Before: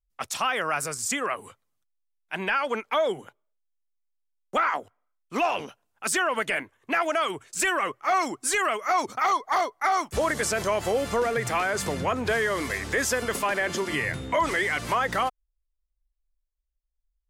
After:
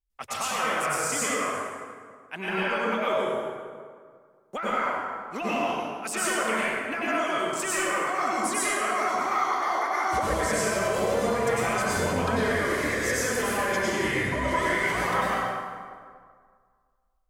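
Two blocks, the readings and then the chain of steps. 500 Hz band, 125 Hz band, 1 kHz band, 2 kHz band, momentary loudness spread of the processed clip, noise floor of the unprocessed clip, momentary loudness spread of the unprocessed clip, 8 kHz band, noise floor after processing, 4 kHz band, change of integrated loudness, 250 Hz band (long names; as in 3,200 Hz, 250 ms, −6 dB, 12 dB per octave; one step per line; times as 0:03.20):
+0.5 dB, +2.0 dB, −0.5 dB, 0.0 dB, 9 LU, −79 dBFS, 5 LU, +0.5 dB, −66 dBFS, −1.0 dB, 0.0 dB, +2.5 dB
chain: downward compressor, threshold −26 dBFS, peak gain reduction 7 dB
dense smooth reverb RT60 1.9 s, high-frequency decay 0.6×, pre-delay 85 ms, DRR −8 dB
level −4.5 dB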